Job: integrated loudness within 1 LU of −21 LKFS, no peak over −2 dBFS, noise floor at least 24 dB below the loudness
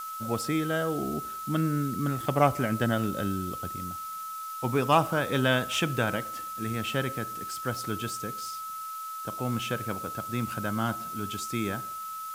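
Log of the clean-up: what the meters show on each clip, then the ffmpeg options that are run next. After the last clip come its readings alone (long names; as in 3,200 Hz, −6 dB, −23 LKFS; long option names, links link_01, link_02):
interfering tone 1,300 Hz; level of the tone −35 dBFS; background noise floor −38 dBFS; target noise floor −54 dBFS; integrated loudness −30.0 LKFS; sample peak −8.0 dBFS; target loudness −21.0 LKFS
→ -af "bandreject=frequency=1300:width=30"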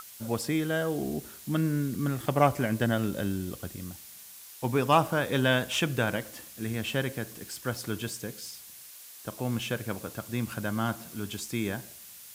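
interfering tone none found; background noise floor −48 dBFS; target noise floor −54 dBFS
→ -af "afftdn=noise_reduction=6:noise_floor=-48"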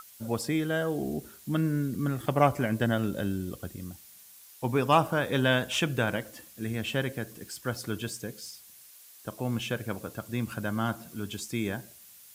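background noise floor −53 dBFS; target noise floor −54 dBFS
→ -af "afftdn=noise_reduction=6:noise_floor=-53"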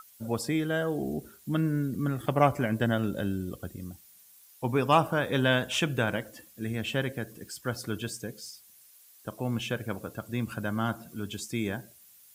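background noise floor −57 dBFS; integrated loudness −30.0 LKFS; sample peak −8.0 dBFS; target loudness −21.0 LKFS
→ -af "volume=9dB,alimiter=limit=-2dB:level=0:latency=1"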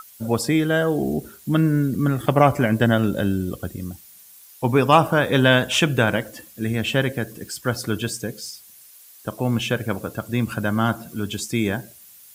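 integrated loudness −21.5 LKFS; sample peak −2.0 dBFS; background noise floor −48 dBFS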